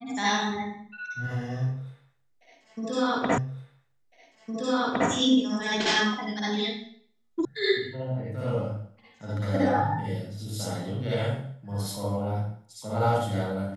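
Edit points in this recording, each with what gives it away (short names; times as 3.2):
3.38 repeat of the last 1.71 s
7.45 sound cut off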